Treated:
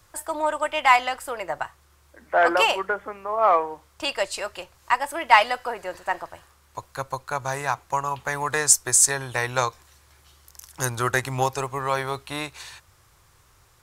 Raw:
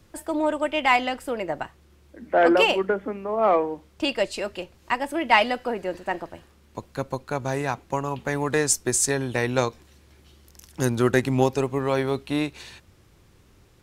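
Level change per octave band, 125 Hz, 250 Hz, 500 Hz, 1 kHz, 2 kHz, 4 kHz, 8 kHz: -4.0 dB, -11.0 dB, -3.5 dB, +3.5 dB, +2.0 dB, +1.0 dB, +6.0 dB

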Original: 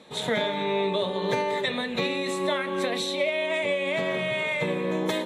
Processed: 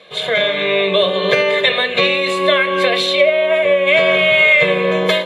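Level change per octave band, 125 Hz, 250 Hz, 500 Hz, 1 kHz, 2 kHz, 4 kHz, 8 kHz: +6.5 dB, +5.5 dB, +12.5 dB, +9.0 dB, +15.5 dB, +14.0 dB, +4.0 dB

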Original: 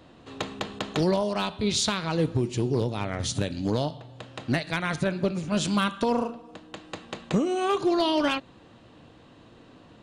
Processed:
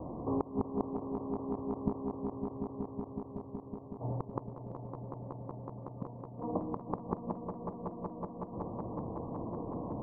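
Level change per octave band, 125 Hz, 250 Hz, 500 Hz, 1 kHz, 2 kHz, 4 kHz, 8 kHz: -10.5 dB, -10.0 dB, -11.5 dB, -11.0 dB, under -35 dB, under -40 dB, under -40 dB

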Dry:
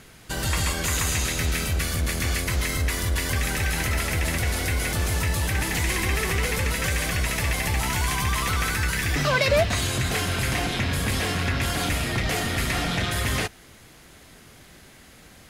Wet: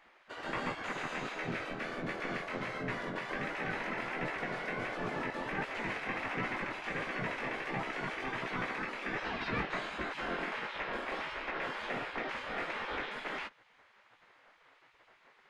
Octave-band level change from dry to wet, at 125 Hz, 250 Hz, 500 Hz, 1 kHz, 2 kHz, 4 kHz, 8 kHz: -22.0 dB, -10.5 dB, -10.0 dB, -7.5 dB, -9.5 dB, -17.0 dB, -31.0 dB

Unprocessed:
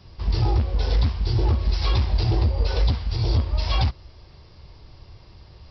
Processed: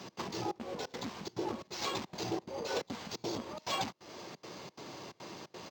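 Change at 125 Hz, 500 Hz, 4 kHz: -28.0 dB, -5.5 dB, -8.5 dB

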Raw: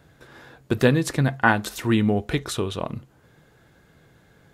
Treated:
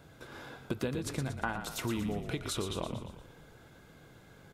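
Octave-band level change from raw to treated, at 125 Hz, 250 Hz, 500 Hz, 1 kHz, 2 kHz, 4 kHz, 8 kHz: -13.5 dB, -13.5 dB, -13.0 dB, -13.5 dB, -15.5 dB, -8.0 dB, -7.0 dB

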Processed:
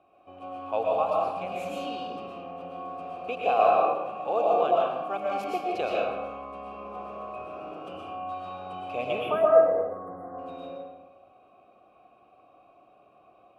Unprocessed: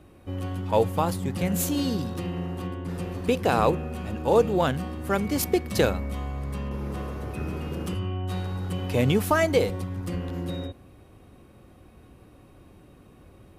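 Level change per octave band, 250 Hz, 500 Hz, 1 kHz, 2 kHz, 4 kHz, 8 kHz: -13.0 dB, +0.5 dB, +3.5 dB, -6.0 dB, -7.5 dB, under -20 dB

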